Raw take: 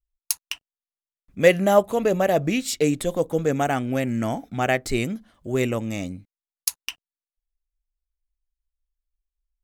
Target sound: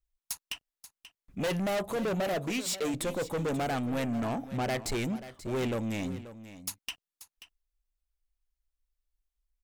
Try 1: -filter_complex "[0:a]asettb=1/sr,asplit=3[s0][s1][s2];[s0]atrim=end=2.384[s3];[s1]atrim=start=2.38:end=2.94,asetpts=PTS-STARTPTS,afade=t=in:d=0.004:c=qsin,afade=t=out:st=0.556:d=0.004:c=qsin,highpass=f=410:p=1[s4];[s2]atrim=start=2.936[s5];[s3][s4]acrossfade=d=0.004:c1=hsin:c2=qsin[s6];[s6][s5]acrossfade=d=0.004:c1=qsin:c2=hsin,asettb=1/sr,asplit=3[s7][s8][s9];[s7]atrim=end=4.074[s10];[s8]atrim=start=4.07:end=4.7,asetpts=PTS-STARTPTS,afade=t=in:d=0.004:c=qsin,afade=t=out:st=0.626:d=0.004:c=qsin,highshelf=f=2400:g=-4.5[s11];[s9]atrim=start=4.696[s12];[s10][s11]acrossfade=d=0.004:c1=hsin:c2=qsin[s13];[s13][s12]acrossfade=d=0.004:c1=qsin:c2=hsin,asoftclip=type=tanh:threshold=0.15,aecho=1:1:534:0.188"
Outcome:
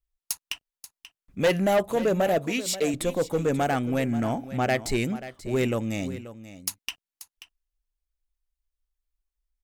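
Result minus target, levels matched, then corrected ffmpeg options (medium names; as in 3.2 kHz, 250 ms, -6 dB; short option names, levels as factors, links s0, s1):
saturation: distortion -7 dB
-filter_complex "[0:a]asettb=1/sr,asplit=3[s0][s1][s2];[s0]atrim=end=2.384[s3];[s1]atrim=start=2.38:end=2.94,asetpts=PTS-STARTPTS,afade=t=in:d=0.004:c=qsin,afade=t=out:st=0.556:d=0.004:c=qsin,highpass=f=410:p=1[s4];[s2]atrim=start=2.936[s5];[s3][s4]acrossfade=d=0.004:c1=hsin:c2=qsin[s6];[s6][s5]acrossfade=d=0.004:c1=qsin:c2=hsin,asettb=1/sr,asplit=3[s7][s8][s9];[s7]atrim=end=4.074[s10];[s8]atrim=start=4.07:end=4.7,asetpts=PTS-STARTPTS,afade=t=in:d=0.004:c=qsin,afade=t=out:st=0.626:d=0.004:c=qsin,highshelf=f=2400:g=-4.5[s11];[s9]atrim=start=4.696[s12];[s10][s11]acrossfade=d=0.004:c1=hsin:c2=qsin[s13];[s13][s12]acrossfade=d=0.004:c1=qsin:c2=hsin,asoftclip=type=tanh:threshold=0.0398,aecho=1:1:534:0.188"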